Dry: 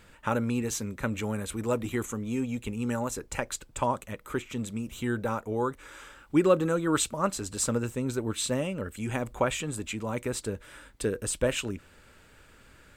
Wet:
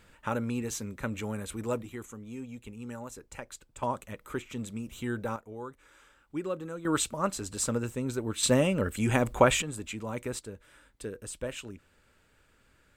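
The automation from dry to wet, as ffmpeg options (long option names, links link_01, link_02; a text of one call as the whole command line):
ffmpeg -i in.wav -af "asetnsamples=nb_out_samples=441:pad=0,asendcmd='1.82 volume volume -10.5dB;3.83 volume volume -3.5dB;5.36 volume volume -12dB;6.85 volume volume -2dB;8.43 volume volume 5.5dB;9.62 volume volume -3.5dB;10.39 volume volume -9.5dB',volume=-3.5dB" out.wav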